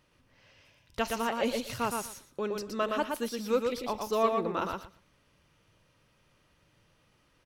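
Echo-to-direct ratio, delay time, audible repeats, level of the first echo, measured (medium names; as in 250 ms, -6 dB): -4.0 dB, 118 ms, 3, -4.0 dB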